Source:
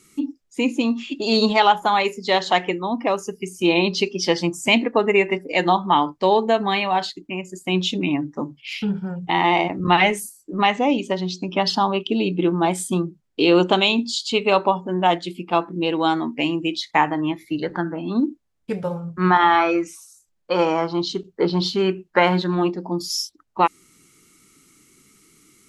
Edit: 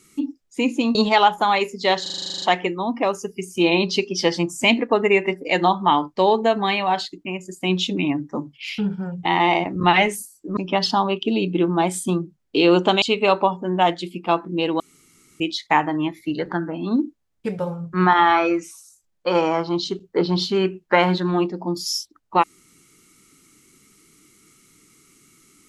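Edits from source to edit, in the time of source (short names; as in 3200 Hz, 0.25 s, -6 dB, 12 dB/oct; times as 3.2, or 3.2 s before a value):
0.95–1.39 cut
2.46 stutter 0.04 s, 11 plays
10.61–11.41 cut
13.86–14.26 cut
16.04–16.64 room tone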